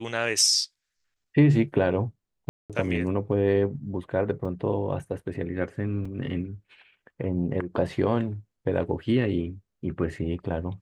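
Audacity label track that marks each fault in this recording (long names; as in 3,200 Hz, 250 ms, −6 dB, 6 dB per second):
2.490000	2.700000	drop-out 207 ms
4.450000	4.450000	drop-out 4.1 ms
6.050000	6.050000	drop-out 4.2 ms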